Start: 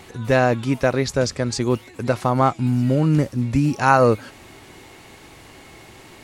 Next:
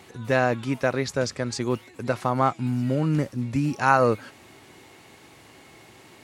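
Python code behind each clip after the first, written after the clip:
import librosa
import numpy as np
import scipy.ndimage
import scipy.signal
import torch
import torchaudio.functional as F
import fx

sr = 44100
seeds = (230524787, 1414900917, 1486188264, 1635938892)

y = scipy.signal.sosfilt(scipy.signal.butter(2, 92.0, 'highpass', fs=sr, output='sos'), x)
y = fx.dynamic_eq(y, sr, hz=1600.0, q=0.8, threshold_db=-34.0, ratio=4.0, max_db=3)
y = F.gain(torch.from_numpy(y), -5.5).numpy()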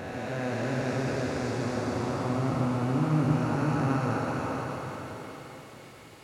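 y = fx.spec_blur(x, sr, span_ms=1250.0)
y = fx.rev_plate(y, sr, seeds[0], rt60_s=3.7, hf_ratio=0.8, predelay_ms=0, drr_db=-2.5)
y = F.gain(torch.from_numpy(y), -3.0).numpy()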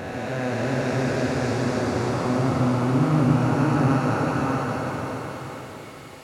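y = x + 10.0 ** (-5.5 / 20.0) * np.pad(x, (int(588 * sr / 1000.0), 0))[:len(x)]
y = F.gain(torch.from_numpy(y), 5.0).numpy()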